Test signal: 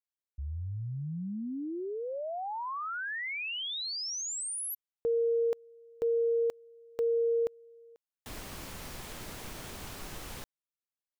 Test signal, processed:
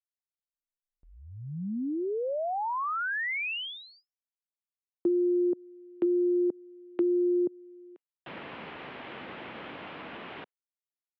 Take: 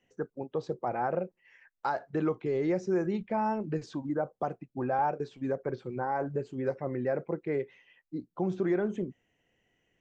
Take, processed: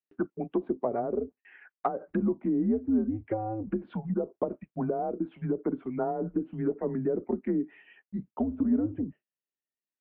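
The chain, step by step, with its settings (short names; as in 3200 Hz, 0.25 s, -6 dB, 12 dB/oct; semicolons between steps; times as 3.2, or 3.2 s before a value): treble ducked by the level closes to 470 Hz, closed at -27 dBFS; mistuned SSB -110 Hz 300–3200 Hz; gate with hold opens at -59 dBFS, closes at -62 dBFS, hold 19 ms, range -35 dB; gain +5.5 dB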